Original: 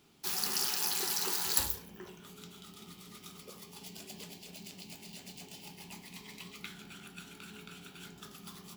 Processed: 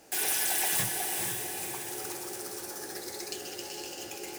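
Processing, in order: speed mistake 7.5 ips tape played at 15 ips; echo that smears into a reverb 490 ms, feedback 54%, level -6 dB; hard clipper -32 dBFS, distortion -11 dB; trim +8.5 dB

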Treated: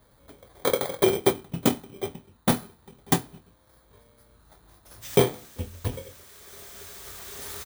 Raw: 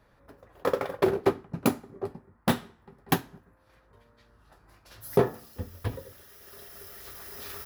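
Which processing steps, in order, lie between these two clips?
bit-reversed sample order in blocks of 16 samples; doubling 24 ms -12 dB; trim +2.5 dB

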